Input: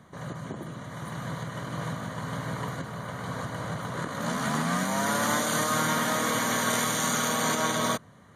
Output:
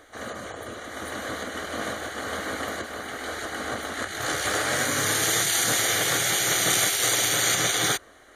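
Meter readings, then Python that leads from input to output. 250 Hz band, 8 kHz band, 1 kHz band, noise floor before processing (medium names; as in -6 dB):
-4.5 dB, +8.0 dB, -2.0 dB, -53 dBFS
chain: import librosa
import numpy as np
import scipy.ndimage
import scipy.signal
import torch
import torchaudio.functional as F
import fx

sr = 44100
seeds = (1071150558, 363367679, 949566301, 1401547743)

y = fx.spec_gate(x, sr, threshold_db=-10, keep='weak')
y = fx.peak_eq(y, sr, hz=970.0, db=-13.5, octaves=0.23)
y = y * 10.0 ** (8.5 / 20.0)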